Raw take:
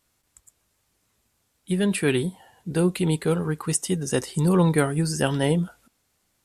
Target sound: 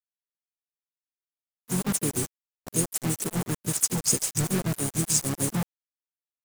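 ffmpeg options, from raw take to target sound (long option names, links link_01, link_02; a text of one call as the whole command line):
ffmpeg -i in.wav -filter_complex "[0:a]tremolo=f=6.8:d=0.93,adynamicequalizer=threshold=0.00708:dfrequency=100:dqfactor=3:tfrequency=100:tqfactor=3:attack=5:release=100:ratio=0.375:range=2:mode=cutabove:tftype=bell,asplit=2[link_01][link_02];[link_02]aecho=0:1:77:0.075[link_03];[link_01][link_03]amix=inputs=2:normalize=0,aexciter=amount=2.6:drive=3.8:freq=2000,acrossover=split=190|570|1700|6000[link_04][link_05][link_06][link_07][link_08];[link_04]acompressor=threshold=-32dB:ratio=4[link_09];[link_05]acompressor=threshold=-26dB:ratio=4[link_10];[link_06]acompressor=threshold=-40dB:ratio=4[link_11];[link_07]acompressor=threshold=-30dB:ratio=4[link_12];[link_08]acompressor=threshold=-21dB:ratio=4[link_13];[link_09][link_10][link_11][link_12][link_13]amix=inputs=5:normalize=0,firequalizer=gain_entry='entry(130,0);entry(280,-1);entry(1100,-21);entry(3200,-25);entry(6800,5);entry(10000,-1)':delay=0.05:min_phase=1,acrusher=bits=4:mix=0:aa=0.000001,asplit=3[link_14][link_15][link_16];[link_15]asetrate=33038,aresample=44100,atempo=1.33484,volume=-8dB[link_17];[link_16]asetrate=55563,aresample=44100,atempo=0.793701,volume=-14dB[link_18];[link_14][link_17][link_18]amix=inputs=3:normalize=0" out.wav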